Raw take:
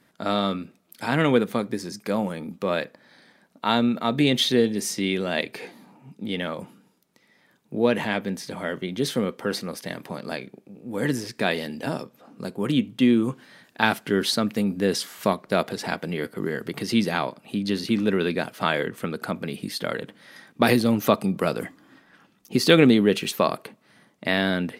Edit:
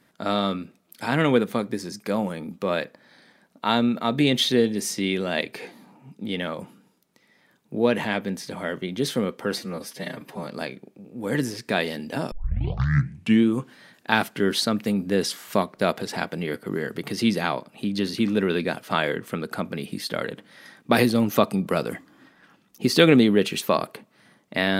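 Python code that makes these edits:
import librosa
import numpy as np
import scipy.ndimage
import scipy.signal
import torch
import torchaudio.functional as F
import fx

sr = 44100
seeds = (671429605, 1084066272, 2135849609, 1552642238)

y = fx.edit(x, sr, fx.stretch_span(start_s=9.58, length_s=0.59, factor=1.5),
    fx.tape_start(start_s=12.02, length_s=1.15), tone=tone)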